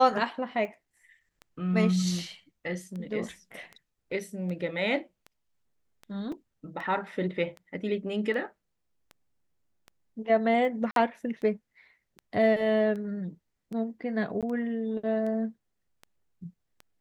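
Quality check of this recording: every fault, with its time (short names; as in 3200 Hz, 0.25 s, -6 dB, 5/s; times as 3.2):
tick 78 rpm -29 dBFS
6.32 gap 3.6 ms
10.91–10.96 gap 52 ms
14.41–14.43 gap 17 ms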